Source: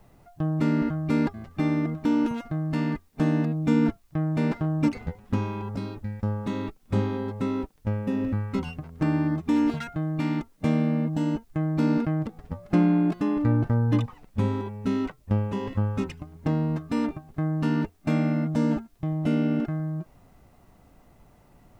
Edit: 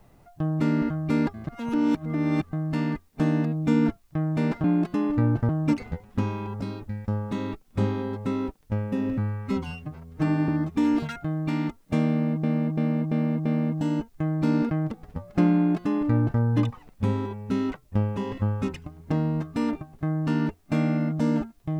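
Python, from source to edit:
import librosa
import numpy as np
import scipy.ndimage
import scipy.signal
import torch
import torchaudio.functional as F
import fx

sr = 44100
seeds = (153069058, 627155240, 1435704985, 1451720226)

y = fx.edit(x, sr, fx.reverse_span(start_s=1.47, length_s=1.06),
    fx.stretch_span(start_s=8.33, length_s=0.87, factor=1.5),
    fx.repeat(start_s=10.81, length_s=0.34, count=5),
    fx.duplicate(start_s=12.91, length_s=0.85, to_s=4.64), tone=tone)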